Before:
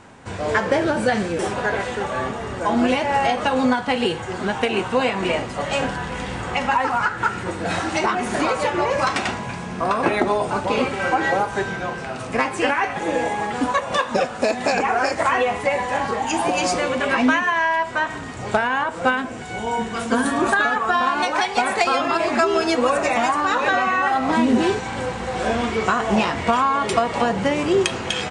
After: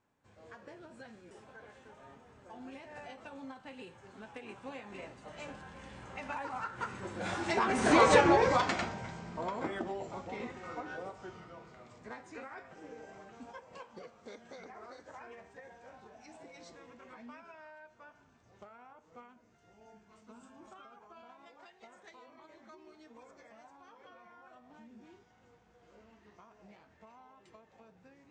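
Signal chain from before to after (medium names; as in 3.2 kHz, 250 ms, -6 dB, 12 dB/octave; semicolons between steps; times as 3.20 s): Doppler pass-by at 8.12 s, 20 m/s, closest 4 m; formant shift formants -2 st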